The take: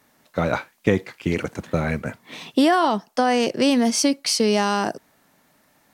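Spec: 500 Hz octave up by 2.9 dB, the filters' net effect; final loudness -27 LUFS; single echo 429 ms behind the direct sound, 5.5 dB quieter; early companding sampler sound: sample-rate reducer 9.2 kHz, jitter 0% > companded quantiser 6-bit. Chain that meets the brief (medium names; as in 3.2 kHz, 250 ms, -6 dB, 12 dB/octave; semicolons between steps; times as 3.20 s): peaking EQ 500 Hz +3.5 dB; delay 429 ms -5.5 dB; sample-rate reducer 9.2 kHz, jitter 0%; companded quantiser 6-bit; trim -7.5 dB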